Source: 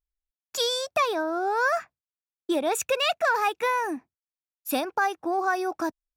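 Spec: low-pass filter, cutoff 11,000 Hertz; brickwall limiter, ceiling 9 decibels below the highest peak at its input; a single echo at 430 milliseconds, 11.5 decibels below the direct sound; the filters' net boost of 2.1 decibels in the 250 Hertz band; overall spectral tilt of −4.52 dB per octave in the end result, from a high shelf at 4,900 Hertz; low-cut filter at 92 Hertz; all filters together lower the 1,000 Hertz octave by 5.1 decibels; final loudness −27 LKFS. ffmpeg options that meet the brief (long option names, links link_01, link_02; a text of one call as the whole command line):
ffmpeg -i in.wav -af "highpass=92,lowpass=11000,equalizer=frequency=250:width_type=o:gain=4,equalizer=frequency=1000:width_type=o:gain=-7.5,highshelf=frequency=4900:gain=8,alimiter=limit=-19.5dB:level=0:latency=1,aecho=1:1:430:0.266,volume=2dB" out.wav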